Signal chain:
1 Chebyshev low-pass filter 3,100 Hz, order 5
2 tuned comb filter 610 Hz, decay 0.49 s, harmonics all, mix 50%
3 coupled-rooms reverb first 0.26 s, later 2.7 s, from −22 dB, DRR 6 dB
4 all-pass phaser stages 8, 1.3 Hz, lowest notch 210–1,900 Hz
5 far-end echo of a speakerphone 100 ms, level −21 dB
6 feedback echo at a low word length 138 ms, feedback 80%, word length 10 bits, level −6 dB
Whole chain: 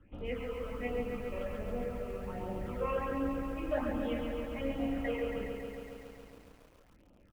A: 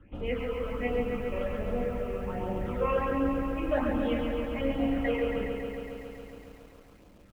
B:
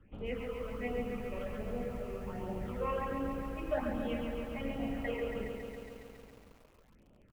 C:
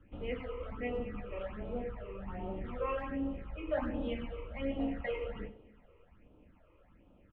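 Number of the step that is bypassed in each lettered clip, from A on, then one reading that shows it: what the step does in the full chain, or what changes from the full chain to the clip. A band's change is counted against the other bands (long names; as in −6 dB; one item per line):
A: 2, change in integrated loudness +6.0 LU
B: 3, change in momentary loudness spread −2 LU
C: 6, change in momentary loudness spread −4 LU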